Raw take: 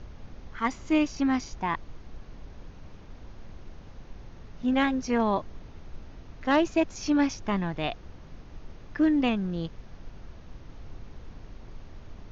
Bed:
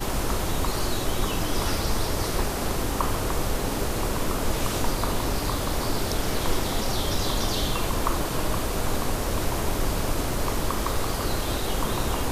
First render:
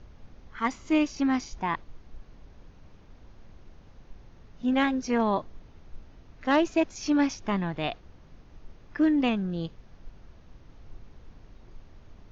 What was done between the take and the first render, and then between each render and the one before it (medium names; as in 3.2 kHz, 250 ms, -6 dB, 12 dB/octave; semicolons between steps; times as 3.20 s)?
noise print and reduce 6 dB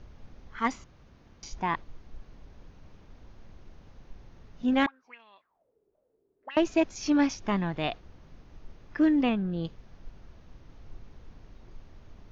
0.84–1.43 s: room tone; 4.86–6.57 s: auto-wah 340–2700 Hz, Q 12, up, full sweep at -21.5 dBFS; 9.23–9.65 s: distance through air 160 m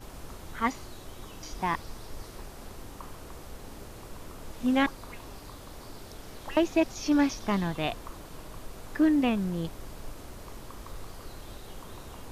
add bed -18.5 dB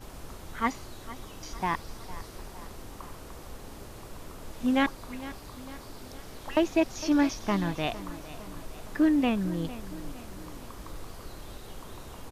feedback delay 457 ms, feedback 53%, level -16 dB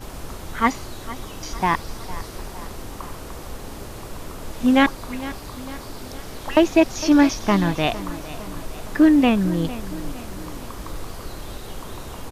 trim +9 dB